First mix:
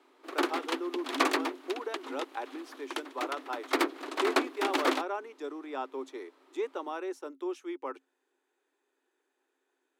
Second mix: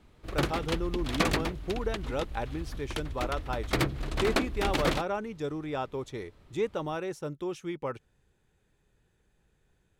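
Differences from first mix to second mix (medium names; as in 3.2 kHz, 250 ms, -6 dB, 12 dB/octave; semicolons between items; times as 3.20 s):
background -4.5 dB; master: remove rippled Chebyshev high-pass 260 Hz, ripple 6 dB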